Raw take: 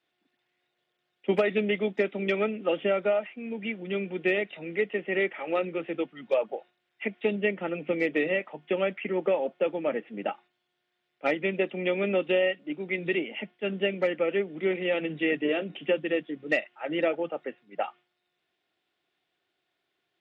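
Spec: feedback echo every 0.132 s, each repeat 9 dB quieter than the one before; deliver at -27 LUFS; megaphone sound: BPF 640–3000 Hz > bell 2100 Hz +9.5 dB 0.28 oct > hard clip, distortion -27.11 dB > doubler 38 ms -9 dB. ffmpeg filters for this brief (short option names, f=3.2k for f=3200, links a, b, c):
-filter_complex "[0:a]highpass=640,lowpass=3k,equalizer=f=2.1k:t=o:w=0.28:g=9.5,aecho=1:1:132|264|396|528:0.355|0.124|0.0435|0.0152,asoftclip=type=hard:threshold=-17dB,asplit=2[a][b];[b]adelay=38,volume=-9dB[c];[a][c]amix=inputs=2:normalize=0,volume=2.5dB"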